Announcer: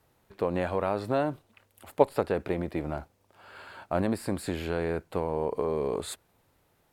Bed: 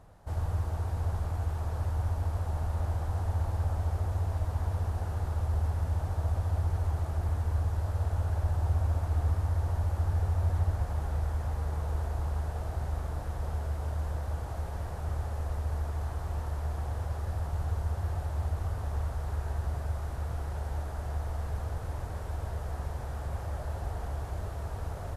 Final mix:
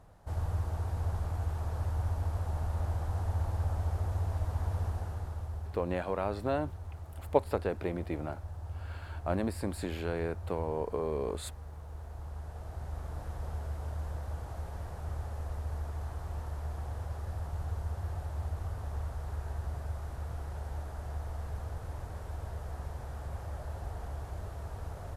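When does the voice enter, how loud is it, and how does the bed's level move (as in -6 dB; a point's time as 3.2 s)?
5.35 s, -4.5 dB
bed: 4.87 s -2 dB
5.84 s -13 dB
11.87 s -13 dB
13.23 s -4.5 dB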